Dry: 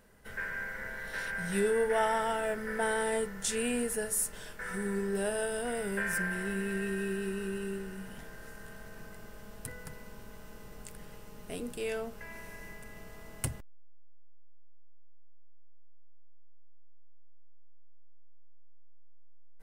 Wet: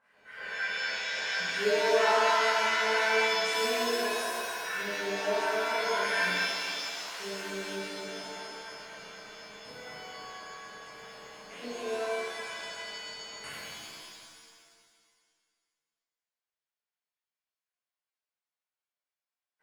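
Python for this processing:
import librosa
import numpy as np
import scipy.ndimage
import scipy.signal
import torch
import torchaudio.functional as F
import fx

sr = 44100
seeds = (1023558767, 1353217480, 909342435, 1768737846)

y = fx.overflow_wrap(x, sr, gain_db=39.0, at=(6.32, 7.2))
y = fx.filter_lfo_bandpass(y, sr, shape='sine', hz=4.1, low_hz=550.0, high_hz=2000.0, q=1.8)
y = fx.rev_shimmer(y, sr, seeds[0], rt60_s=1.9, semitones=7, shimmer_db=-2, drr_db=-11.5)
y = y * 10.0 ** (-3.5 / 20.0)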